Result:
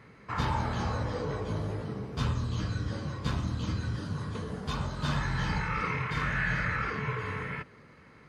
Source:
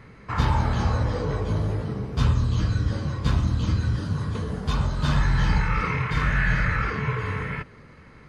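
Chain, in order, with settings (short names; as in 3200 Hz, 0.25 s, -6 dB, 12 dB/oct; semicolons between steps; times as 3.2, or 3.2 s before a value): HPF 140 Hz 6 dB/oct; gain -4.5 dB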